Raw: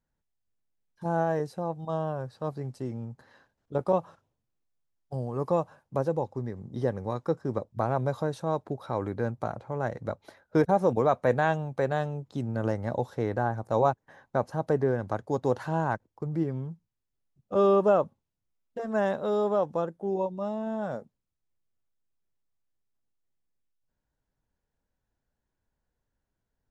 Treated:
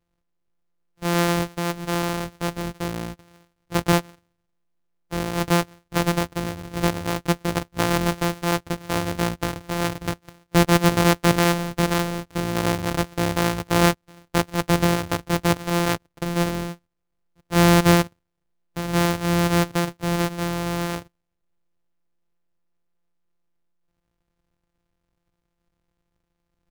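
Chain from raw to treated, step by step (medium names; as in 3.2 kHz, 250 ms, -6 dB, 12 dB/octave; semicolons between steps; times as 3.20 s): sorted samples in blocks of 256 samples; trim +6 dB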